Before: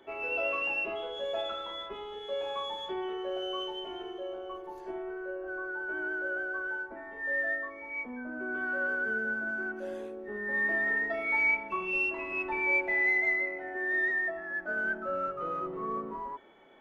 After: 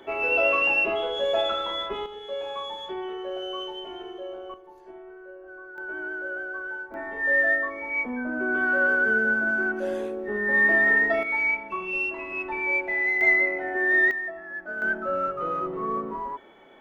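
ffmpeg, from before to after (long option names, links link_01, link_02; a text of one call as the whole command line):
ffmpeg -i in.wav -af "asetnsamples=nb_out_samples=441:pad=0,asendcmd='2.06 volume volume 2dB;4.54 volume volume -6dB;5.78 volume volume 1dB;6.94 volume volume 9.5dB;11.23 volume volume 2dB;13.21 volume volume 9dB;14.11 volume volume -0.5dB;14.82 volume volume 6dB',volume=9.5dB" out.wav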